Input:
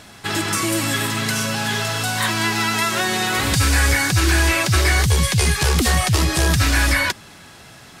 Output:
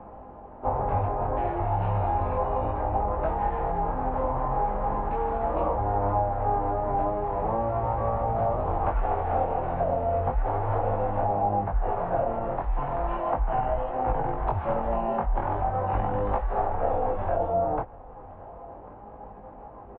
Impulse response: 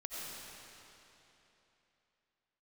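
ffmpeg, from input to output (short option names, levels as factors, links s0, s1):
-filter_complex "[0:a]asplit=2[s0][s1];[s1]acrusher=samples=17:mix=1:aa=0.000001,volume=0.282[s2];[s0][s2]amix=inputs=2:normalize=0,atempo=1.3,lowpass=f=2600:t=q:w=4.1,acrossover=split=500|1400[s3][s4][s5];[s3]acompressor=threshold=0.0891:ratio=4[s6];[s4]acompressor=threshold=0.0126:ratio=4[s7];[s5]acompressor=threshold=0.0891:ratio=4[s8];[s6][s7][s8]amix=inputs=3:normalize=0,asetrate=13583,aresample=44100,flanger=delay=19:depth=3.8:speed=0.36,aecho=1:1:1095:0.0708,volume=0.841"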